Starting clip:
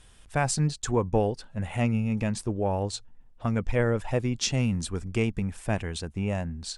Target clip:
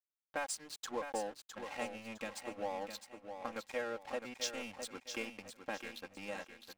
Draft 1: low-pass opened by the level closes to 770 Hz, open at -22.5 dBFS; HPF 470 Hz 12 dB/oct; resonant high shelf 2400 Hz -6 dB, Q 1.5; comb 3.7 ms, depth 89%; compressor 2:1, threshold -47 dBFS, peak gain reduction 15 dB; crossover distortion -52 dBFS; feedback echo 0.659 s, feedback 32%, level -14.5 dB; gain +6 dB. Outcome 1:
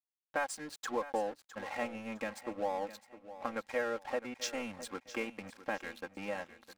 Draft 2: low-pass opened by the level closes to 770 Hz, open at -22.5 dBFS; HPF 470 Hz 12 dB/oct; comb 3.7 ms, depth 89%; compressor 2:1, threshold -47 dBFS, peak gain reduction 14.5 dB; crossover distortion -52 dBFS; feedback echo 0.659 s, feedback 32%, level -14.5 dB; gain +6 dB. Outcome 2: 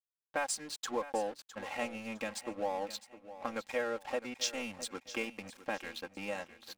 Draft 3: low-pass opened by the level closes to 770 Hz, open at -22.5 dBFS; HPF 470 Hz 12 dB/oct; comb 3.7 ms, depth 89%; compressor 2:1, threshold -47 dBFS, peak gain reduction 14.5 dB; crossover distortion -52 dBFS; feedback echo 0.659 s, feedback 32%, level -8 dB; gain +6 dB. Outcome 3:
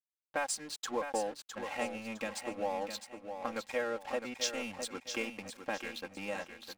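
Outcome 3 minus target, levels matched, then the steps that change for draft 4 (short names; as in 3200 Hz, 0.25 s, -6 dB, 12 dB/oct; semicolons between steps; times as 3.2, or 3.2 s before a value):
compressor: peak gain reduction -4 dB
change: compressor 2:1, threshold -54.5 dBFS, peak gain reduction 18 dB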